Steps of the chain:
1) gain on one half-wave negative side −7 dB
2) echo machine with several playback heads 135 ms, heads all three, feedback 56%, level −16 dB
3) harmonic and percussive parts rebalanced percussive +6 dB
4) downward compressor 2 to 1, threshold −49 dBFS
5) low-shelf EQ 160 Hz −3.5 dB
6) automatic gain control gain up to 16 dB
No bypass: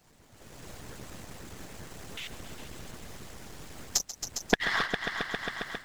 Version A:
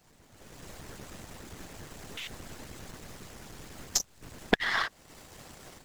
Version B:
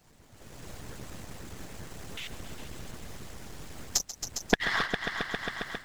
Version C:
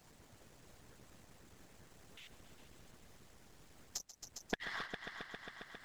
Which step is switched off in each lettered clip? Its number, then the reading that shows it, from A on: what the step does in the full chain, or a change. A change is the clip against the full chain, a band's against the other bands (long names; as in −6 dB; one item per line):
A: 2, change in momentary loudness spread +2 LU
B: 5, 125 Hz band +2.0 dB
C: 6, change in momentary loudness spread +1 LU